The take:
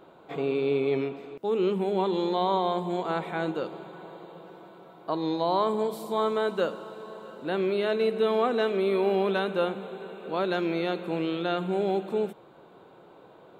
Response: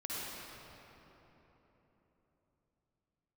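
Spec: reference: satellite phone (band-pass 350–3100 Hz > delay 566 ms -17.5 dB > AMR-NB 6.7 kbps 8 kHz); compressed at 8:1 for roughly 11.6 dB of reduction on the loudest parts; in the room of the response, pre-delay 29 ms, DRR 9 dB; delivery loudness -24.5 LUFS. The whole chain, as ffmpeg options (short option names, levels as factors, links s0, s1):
-filter_complex "[0:a]acompressor=threshold=0.0224:ratio=8,asplit=2[s0][s1];[1:a]atrim=start_sample=2205,adelay=29[s2];[s1][s2]afir=irnorm=-1:irlink=0,volume=0.251[s3];[s0][s3]amix=inputs=2:normalize=0,highpass=350,lowpass=3100,aecho=1:1:566:0.133,volume=5.96" -ar 8000 -c:a libopencore_amrnb -b:a 6700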